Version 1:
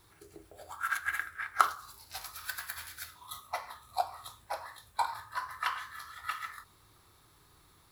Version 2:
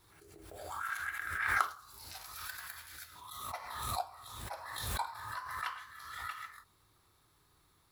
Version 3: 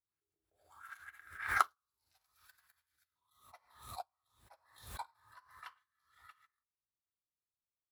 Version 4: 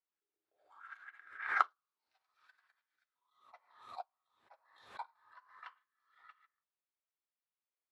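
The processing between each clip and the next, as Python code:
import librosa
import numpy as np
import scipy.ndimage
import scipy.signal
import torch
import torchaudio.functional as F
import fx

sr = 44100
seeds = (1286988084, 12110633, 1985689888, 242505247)

y1 = fx.pre_swell(x, sr, db_per_s=39.0)
y1 = y1 * librosa.db_to_amplitude(-7.0)
y2 = fx.upward_expand(y1, sr, threshold_db=-53.0, expansion=2.5)
y2 = y2 * librosa.db_to_amplitude(2.5)
y3 = fx.bandpass_edges(y2, sr, low_hz=360.0, high_hz=3000.0)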